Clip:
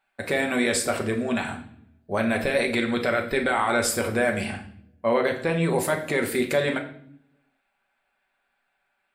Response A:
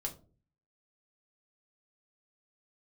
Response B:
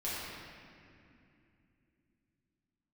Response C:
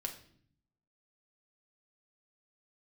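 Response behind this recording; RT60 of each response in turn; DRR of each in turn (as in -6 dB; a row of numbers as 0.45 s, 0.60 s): C; no single decay rate, 2.6 s, 0.60 s; 0.5 dB, -10.0 dB, 2.0 dB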